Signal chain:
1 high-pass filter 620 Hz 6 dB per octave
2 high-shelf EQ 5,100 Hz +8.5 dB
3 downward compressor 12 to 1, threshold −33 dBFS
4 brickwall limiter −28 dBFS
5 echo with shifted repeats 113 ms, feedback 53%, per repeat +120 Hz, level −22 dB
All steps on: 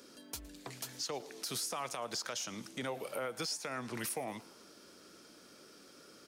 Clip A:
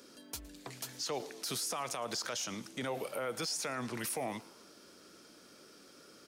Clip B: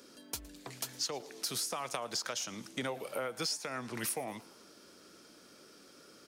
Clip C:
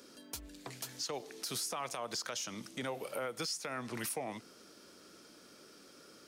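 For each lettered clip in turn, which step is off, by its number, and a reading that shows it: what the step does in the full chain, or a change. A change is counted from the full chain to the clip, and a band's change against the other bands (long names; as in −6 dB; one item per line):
3, average gain reduction 6.0 dB
4, change in crest factor +5.0 dB
5, echo-to-direct ratio −20.5 dB to none audible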